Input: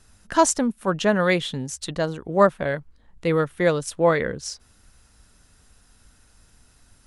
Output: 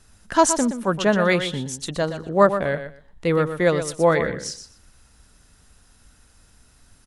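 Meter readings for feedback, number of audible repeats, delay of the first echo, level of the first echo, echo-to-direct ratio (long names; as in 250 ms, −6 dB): 18%, 2, 121 ms, −10.0 dB, −10.0 dB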